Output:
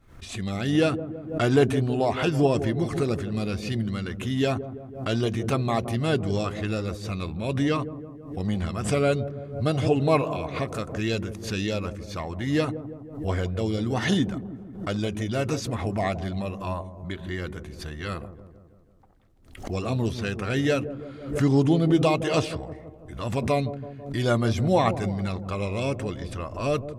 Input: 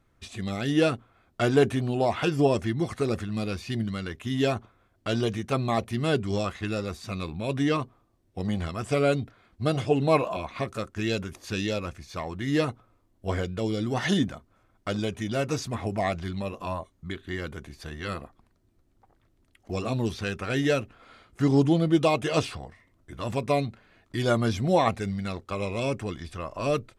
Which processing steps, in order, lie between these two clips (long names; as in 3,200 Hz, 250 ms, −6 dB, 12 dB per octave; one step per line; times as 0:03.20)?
low-shelf EQ 110 Hz +5 dB
on a send: delay with a low-pass on its return 164 ms, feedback 57%, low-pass 630 Hz, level −10 dB
on the sum: background raised ahead of every attack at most 95 dB per second